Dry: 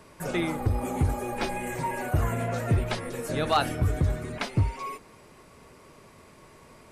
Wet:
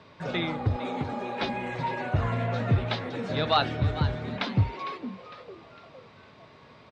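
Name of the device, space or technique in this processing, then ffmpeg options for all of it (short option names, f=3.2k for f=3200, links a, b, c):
frequency-shifting delay pedal into a guitar cabinet: -filter_complex "[0:a]asplit=5[a][b][c][d][e];[b]adelay=455,afreqshift=140,volume=-13dB[f];[c]adelay=910,afreqshift=280,volume=-20.3dB[g];[d]adelay=1365,afreqshift=420,volume=-27.7dB[h];[e]adelay=1820,afreqshift=560,volume=-35dB[i];[a][f][g][h][i]amix=inputs=5:normalize=0,highpass=86,equalizer=f=110:t=q:w=4:g=4,equalizer=f=350:t=q:w=4:g=-5,equalizer=f=3.7k:t=q:w=4:g=7,lowpass=f=4.6k:w=0.5412,lowpass=f=4.6k:w=1.3066,asettb=1/sr,asplit=3[j][k][l];[j]atrim=end=0.764[m];[k]atrim=start=0.76:end=1.42,asetpts=PTS-STARTPTS,afade=t=in:d=0.004:c=qsin,afade=t=out:st=0.656:d=0.004:c=qsin,highpass=190[n];[l]atrim=start=1.416[o];[m][n]acrossfade=d=0.004:c1=hsin:c2=qsin[p];[p][o]acrossfade=d=0.004:c1=qsin:c2=hsin"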